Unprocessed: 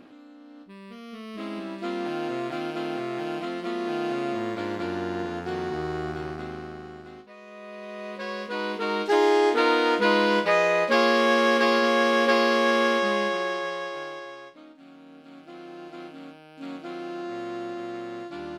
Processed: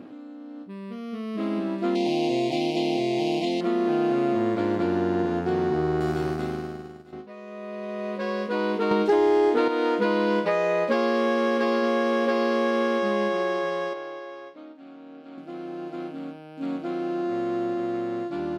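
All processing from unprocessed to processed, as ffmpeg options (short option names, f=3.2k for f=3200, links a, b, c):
-filter_complex "[0:a]asettb=1/sr,asplit=3[a][b][c];[a]atrim=end=1.954[d];[b]atrim=start=1.95:end=3.61,asetpts=PTS-STARTPTS,afade=t=in:d=0.004:c=qsin,afade=t=out:st=1.656:d=0.004:c=qsin,equalizer=f=5.1k:w=0.45:g=14,aeval=exprs='sgn(val(0))*max(abs(val(0))-0.00106,0)':c=same,asuperstop=centerf=1400:order=8:qfactor=1.2[e];[c]atrim=start=3.606[f];[d][e]acrossfade=d=0.004:c1=hsin:c2=qsin[g];[g][f]acrossfade=d=0.004:c1=qsin:c2=hsin,asettb=1/sr,asplit=3[h][i][j];[h]atrim=end=6.004[k];[i]atrim=start=6:end=7.13,asetpts=PTS-STARTPTS,afade=t=in:d=0.004:c=qsin,afade=t=out:st=1.126:d=0.004:c=qsin,aemphasis=mode=production:type=75kf,agate=range=-33dB:threshold=-35dB:ratio=3:release=100:detection=peak[l];[j]atrim=start=7.126[m];[k][l]acrossfade=d=0.004:c1=hsin:c2=qsin[n];[n][m]acrossfade=d=0.004:c1=qsin:c2=hsin,asettb=1/sr,asplit=3[o][p][q];[o]atrim=end=8.914[r];[p]atrim=start=8.91:end=9.68,asetpts=PTS-STARTPTS,afade=t=in:d=0.004:c=qsin,afade=t=out:st=0.766:d=0.004:c=qsin,lowshelf=f=110:g=12,acontrast=59[s];[q]atrim=start=9.676[t];[r][s]acrossfade=d=0.004:c1=hsin:c2=qsin[u];[u][t]acrossfade=d=0.004:c1=qsin:c2=hsin,asettb=1/sr,asplit=3[v][w][x];[v]atrim=end=13.934[y];[w]atrim=start=13.93:end=15.38,asetpts=PTS-STARTPTS,afade=t=in:d=0.004:c=qsin,afade=t=out:st=1.446:d=0.004:c=qsin,highpass=290,lowpass=5.8k,acompressor=threshold=-43dB:ratio=1.5:attack=3.2:release=140:knee=1:detection=peak[z];[x]atrim=start=15.376[aa];[y][z]acrossfade=d=0.004:c1=hsin:c2=qsin[ab];[ab][aa]acrossfade=d=0.004:c1=qsin:c2=hsin,acompressor=threshold=-25dB:ratio=5,highpass=86,tiltshelf=f=970:g=5.5,volume=3dB"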